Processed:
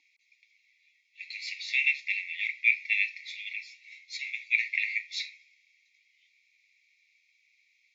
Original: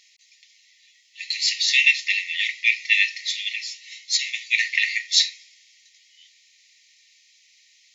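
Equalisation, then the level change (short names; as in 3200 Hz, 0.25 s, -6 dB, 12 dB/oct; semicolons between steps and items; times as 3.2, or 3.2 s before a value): vowel filter u; notch 3000 Hz, Q 6.8; +8.0 dB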